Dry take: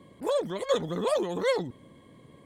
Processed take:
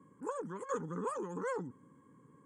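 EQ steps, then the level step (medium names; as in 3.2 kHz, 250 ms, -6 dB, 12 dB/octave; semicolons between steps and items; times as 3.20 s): cabinet simulation 220–7200 Hz, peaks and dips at 220 Hz -5 dB, 350 Hz -8 dB, 630 Hz -8 dB, 1.2 kHz -3 dB, 2.1 kHz -5 dB, 5.6 kHz -7 dB; high-order bell 3 kHz -14 dB; static phaser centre 1.6 kHz, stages 4; +1.0 dB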